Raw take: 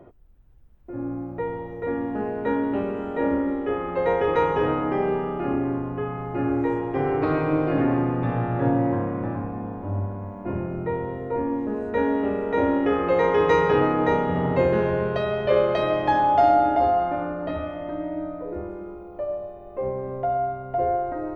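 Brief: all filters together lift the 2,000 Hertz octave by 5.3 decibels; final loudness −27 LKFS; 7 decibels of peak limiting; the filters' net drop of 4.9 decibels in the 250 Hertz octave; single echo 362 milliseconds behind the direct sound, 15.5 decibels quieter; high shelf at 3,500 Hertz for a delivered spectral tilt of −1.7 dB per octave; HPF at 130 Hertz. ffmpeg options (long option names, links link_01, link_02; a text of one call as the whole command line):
ffmpeg -i in.wav -af "highpass=130,equalizer=frequency=250:width_type=o:gain=-6,equalizer=frequency=2000:width_type=o:gain=8.5,highshelf=frequency=3500:gain=-9,alimiter=limit=-12.5dB:level=0:latency=1,aecho=1:1:362:0.168,volume=-1dB" out.wav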